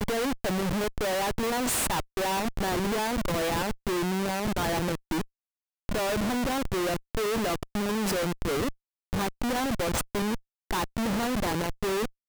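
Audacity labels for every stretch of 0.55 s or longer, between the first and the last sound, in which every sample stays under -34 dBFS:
5.220000	5.890000	silence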